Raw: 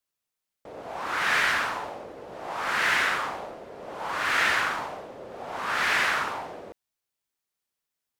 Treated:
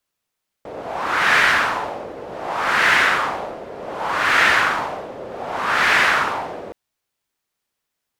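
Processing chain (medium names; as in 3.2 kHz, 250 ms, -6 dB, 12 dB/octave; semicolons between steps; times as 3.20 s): treble shelf 4.7 kHz -5 dB; trim +9 dB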